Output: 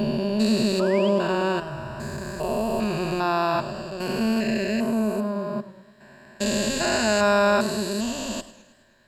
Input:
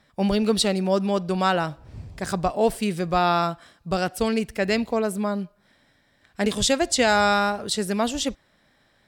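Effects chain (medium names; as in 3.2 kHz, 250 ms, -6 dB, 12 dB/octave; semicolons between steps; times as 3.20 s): spectrogram pixelated in time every 400 ms; rippled EQ curve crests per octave 1.4, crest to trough 12 dB; painted sound rise, 0.79–1.09 s, 1.2–3.4 kHz -38 dBFS; modulated delay 106 ms, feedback 56%, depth 133 cents, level -16 dB; trim +1.5 dB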